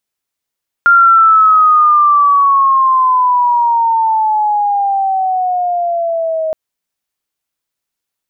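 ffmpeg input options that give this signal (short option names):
-f lavfi -i "aevalsrc='pow(10,(-3.5-10*t/5.67)/20)*sin(2*PI*1400*5.67/log(630/1400)*(exp(log(630/1400)*t/5.67)-1))':d=5.67:s=44100"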